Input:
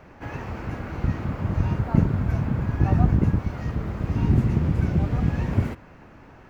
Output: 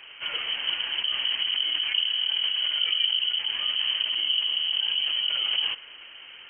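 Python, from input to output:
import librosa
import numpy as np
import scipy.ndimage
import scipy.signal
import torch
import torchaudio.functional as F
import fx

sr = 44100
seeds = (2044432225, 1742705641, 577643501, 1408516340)

p1 = fx.over_compress(x, sr, threshold_db=-27.0, ratio=-0.5)
p2 = x + F.gain(torch.from_numpy(p1), 2.0).numpy()
p3 = fx.freq_invert(p2, sr, carrier_hz=3100)
y = F.gain(torch.from_numpy(p3), -8.5).numpy()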